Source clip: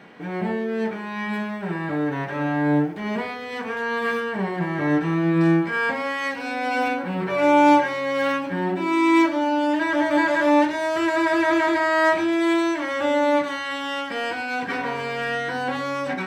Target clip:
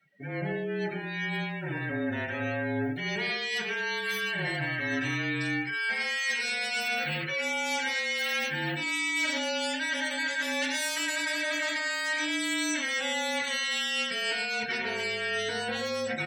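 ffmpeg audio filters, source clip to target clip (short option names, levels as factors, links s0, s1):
-filter_complex "[0:a]aemphasis=mode=production:type=75fm,asplit=2[s0][s1];[s1]adelay=110.8,volume=0.398,highshelf=f=4000:g=-2.49[s2];[s0][s2]amix=inputs=2:normalize=0,acrossover=split=1600[s3][s4];[s3]flanger=delay=1.4:depth=1.2:regen=61:speed=0.43:shape=triangular[s5];[s4]dynaudnorm=f=430:g=17:m=3.55[s6];[s5][s6]amix=inputs=2:normalize=0,afreqshift=-34,areverse,acompressor=threshold=0.0562:ratio=12,areverse,afftdn=nr=29:nf=-38,equalizer=f=1100:w=2.5:g=-10.5"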